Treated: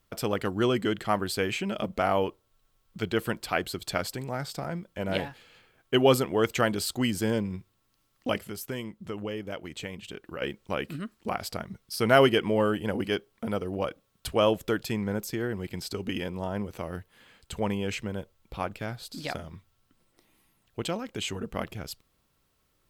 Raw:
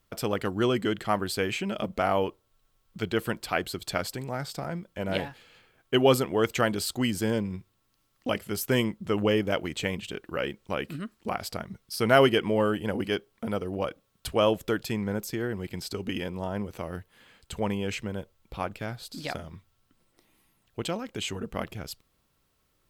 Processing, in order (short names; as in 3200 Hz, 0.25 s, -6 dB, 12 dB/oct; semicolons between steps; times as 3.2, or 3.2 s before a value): 8.38–10.42 compressor 2:1, threshold -40 dBFS, peak gain reduction 11.5 dB